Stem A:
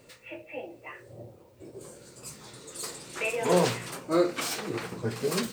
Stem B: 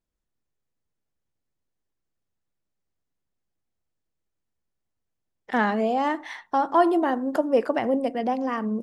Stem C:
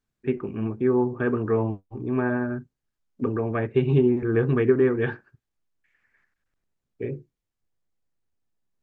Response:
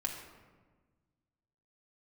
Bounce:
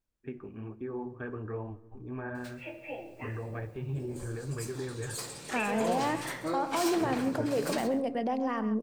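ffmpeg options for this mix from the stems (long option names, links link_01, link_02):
-filter_complex "[0:a]acompressor=threshold=-31dB:ratio=3,adelay=2350,volume=-4dB,asplit=3[link_01][link_02][link_03];[link_02]volume=-5.5dB[link_04];[link_03]volume=-15dB[link_05];[1:a]alimiter=limit=-19dB:level=0:latency=1:release=26,volume=-3.5dB,asplit=2[link_06][link_07];[link_07]volume=-11.5dB[link_08];[2:a]asubboost=boost=11.5:cutoff=65,alimiter=limit=-17.5dB:level=0:latency=1:release=62,flanger=delay=1.4:depth=9.6:regen=-41:speed=1.1:shape=triangular,volume=-9dB,asplit=2[link_09][link_10];[link_10]volume=-13dB[link_11];[3:a]atrim=start_sample=2205[link_12];[link_04][link_11]amix=inputs=2:normalize=0[link_13];[link_13][link_12]afir=irnorm=-1:irlink=0[link_14];[link_05][link_08]amix=inputs=2:normalize=0,aecho=0:1:135:1[link_15];[link_01][link_06][link_09][link_14][link_15]amix=inputs=5:normalize=0"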